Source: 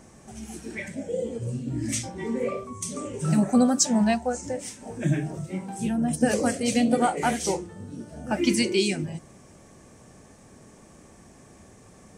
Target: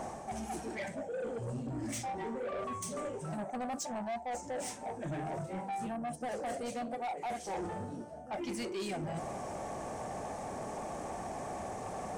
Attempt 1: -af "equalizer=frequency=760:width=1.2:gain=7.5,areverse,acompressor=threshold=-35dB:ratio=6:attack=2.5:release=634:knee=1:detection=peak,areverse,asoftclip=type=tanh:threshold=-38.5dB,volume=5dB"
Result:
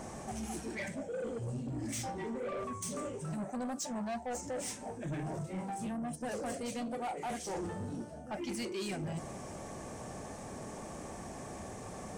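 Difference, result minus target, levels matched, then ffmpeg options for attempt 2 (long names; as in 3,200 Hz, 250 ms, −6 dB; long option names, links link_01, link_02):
1,000 Hz band −3.5 dB
-af "equalizer=frequency=760:width=1.2:gain=18,areverse,acompressor=threshold=-35dB:ratio=6:attack=2.5:release=634:knee=1:detection=peak,areverse,asoftclip=type=tanh:threshold=-38.5dB,volume=5dB"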